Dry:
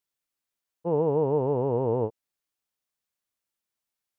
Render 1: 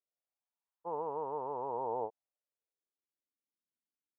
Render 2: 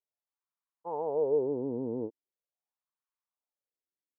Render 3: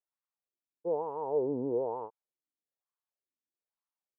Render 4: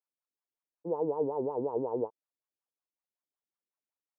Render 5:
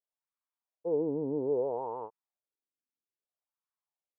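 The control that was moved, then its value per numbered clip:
LFO wah, speed: 0.2, 0.41, 1.1, 5.4, 0.61 Hertz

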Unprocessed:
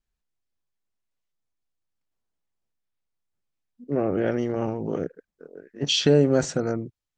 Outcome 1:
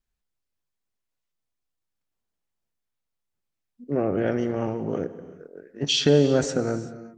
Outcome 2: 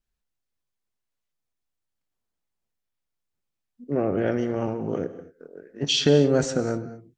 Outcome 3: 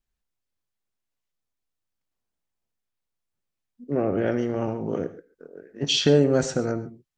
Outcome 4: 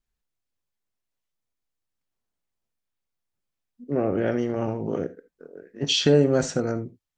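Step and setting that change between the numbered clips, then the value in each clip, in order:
reverb whose tail is shaped and stops, gate: 410, 270, 160, 100 milliseconds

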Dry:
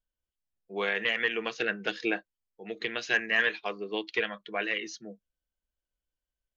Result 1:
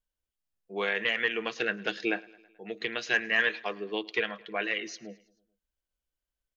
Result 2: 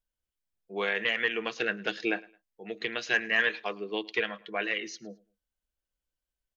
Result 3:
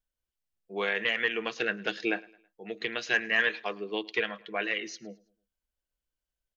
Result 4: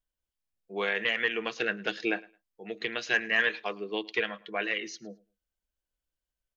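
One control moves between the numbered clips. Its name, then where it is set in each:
repeating echo, feedback: 59, 26, 39, 18%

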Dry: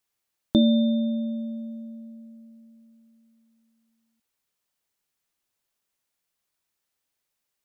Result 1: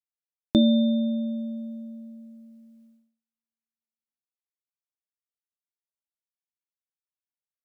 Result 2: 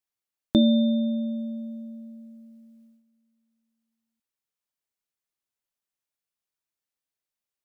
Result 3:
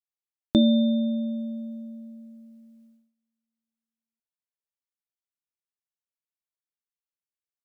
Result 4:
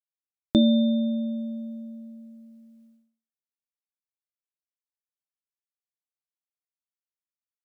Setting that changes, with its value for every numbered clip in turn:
noise gate, range: −38, −10, −23, −55 decibels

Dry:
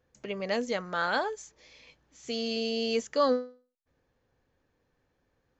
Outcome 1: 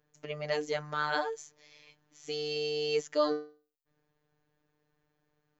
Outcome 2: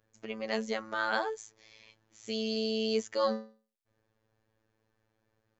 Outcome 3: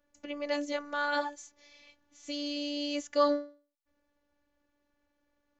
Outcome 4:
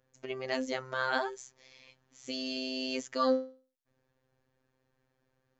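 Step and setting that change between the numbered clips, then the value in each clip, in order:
phases set to zero, frequency: 150, 110, 290, 130 Hertz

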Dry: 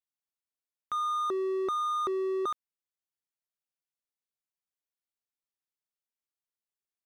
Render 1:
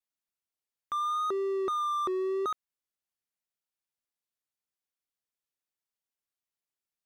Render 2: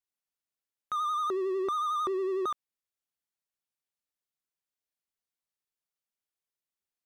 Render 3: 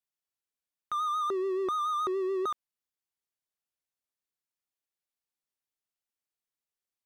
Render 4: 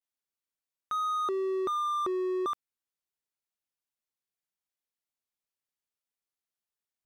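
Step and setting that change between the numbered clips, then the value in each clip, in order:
pitch vibrato, speed: 0.88, 11, 7, 0.33 Hertz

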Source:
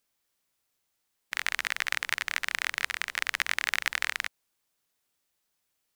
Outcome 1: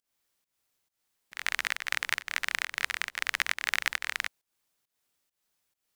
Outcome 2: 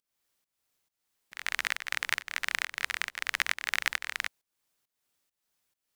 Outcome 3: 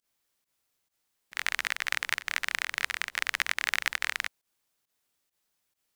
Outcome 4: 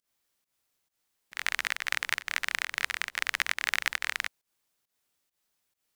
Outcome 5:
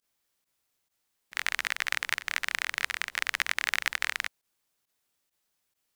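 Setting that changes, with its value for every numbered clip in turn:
fake sidechain pumping, release: 227, 362, 97, 150, 60 milliseconds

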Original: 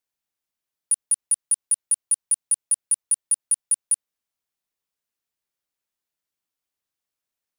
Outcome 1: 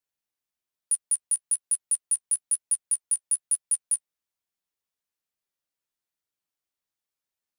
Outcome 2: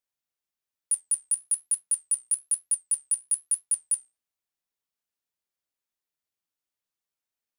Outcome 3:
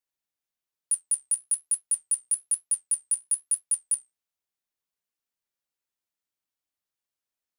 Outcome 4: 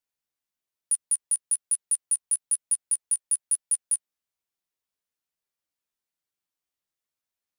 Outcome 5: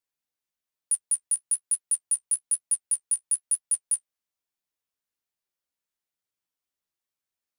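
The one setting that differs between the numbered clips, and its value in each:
flanger, regen: −14, +70, −63, +6, +28%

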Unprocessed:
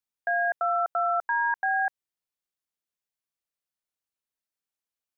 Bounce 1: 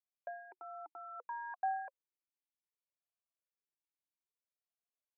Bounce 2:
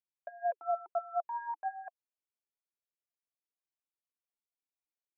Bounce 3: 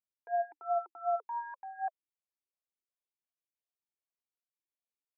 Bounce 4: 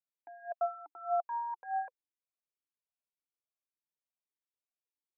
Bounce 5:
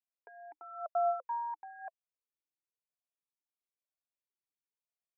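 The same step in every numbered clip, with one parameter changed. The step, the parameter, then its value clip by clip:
formant filter swept between two vowels, speed: 0.63, 4.2, 2.7, 1.7, 1 Hertz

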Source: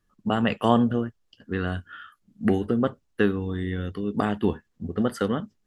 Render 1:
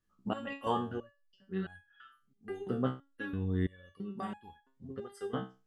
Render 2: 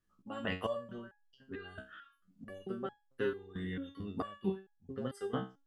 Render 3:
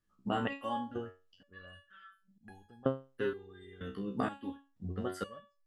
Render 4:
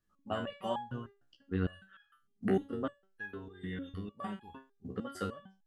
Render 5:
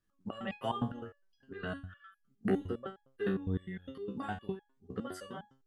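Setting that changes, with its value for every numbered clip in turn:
step-sequenced resonator, speed: 3, 4.5, 2.1, 6.6, 9.8 Hertz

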